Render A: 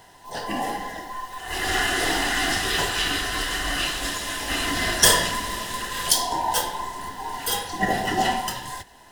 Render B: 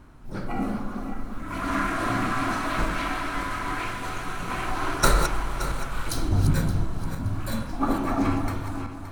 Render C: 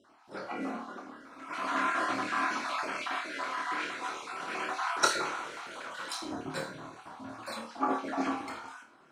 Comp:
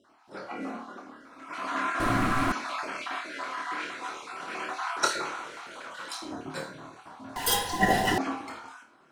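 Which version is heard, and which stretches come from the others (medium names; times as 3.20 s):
C
2.00–2.52 s: from B
7.36–8.18 s: from A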